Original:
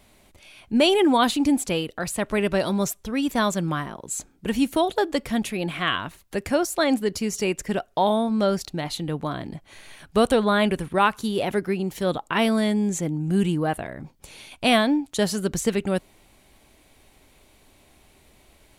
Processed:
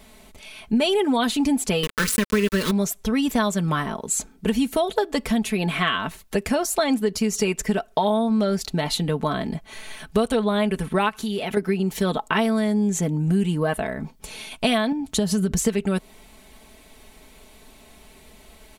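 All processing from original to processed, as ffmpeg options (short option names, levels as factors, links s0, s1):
-filter_complex "[0:a]asettb=1/sr,asplit=3[s0][s1][s2];[s0]atrim=end=1.834[s3];[s1]atrim=start=1.83:end=2.71,asetpts=PTS-STARTPTS,afade=t=in:d=0.004:c=qsin,afade=t=out:st=0.876:d=0.004:c=qsin,acontrast=51,aeval=exprs='val(0)*gte(abs(val(0)),0.0794)':c=same,asuperstop=centerf=730:order=4:qfactor=1.4[s4];[s2]atrim=start=2.706[s5];[s3][s4]acrossfade=d=0.004:c1=hsin:c2=qsin[s6];[s6][s5]acrossfade=d=0.004:c1=qsin:c2=hsin,asettb=1/sr,asplit=3[s7][s8][s9];[s7]atrim=end=11.094[s10];[s8]atrim=start=11.09:end=11.57,asetpts=PTS-STARTPTS,afade=t=in:d=0.004:c=qsin,afade=t=out:st=0.476:d=0.004:c=qsin,equalizer=f=2600:w=1:g=5,bandreject=f=1000:w=15,acompressor=threshold=0.0282:ratio=5:attack=3.2:release=140:knee=1:detection=peak[s11];[s9]atrim=start=11.566[s12];[s10][s11]acrossfade=d=0.004:c1=hsin:c2=qsin[s13];[s13][s12]acrossfade=d=0.004:c1=qsin:c2=hsin,asettb=1/sr,asplit=3[s14][s15][s16];[s14]atrim=end=14.924[s17];[s15]atrim=start=14.92:end=15.57,asetpts=PTS-STARTPTS,afade=t=in:d=0.004:c=qsin,afade=t=out:st=0.646:d=0.004:c=qsin,equalizer=f=88:t=o:w=2.5:g=13,acompressor=threshold=0.0631:ratio=3:attack=3.2:release=140:knee=1:detection=peak[s18];[s16]atrim=start=15.566[s19];[s17][s18]acrossfade=d=0.004:c1=hsin:c2=qsin[s20];[s20][s19]acrossfade=d=0.004:c1=qsin:c2=hsin,aecho=1:1:4.6:0.62,acompressor=threshold=0.0631:ratio=5,volume=1.88"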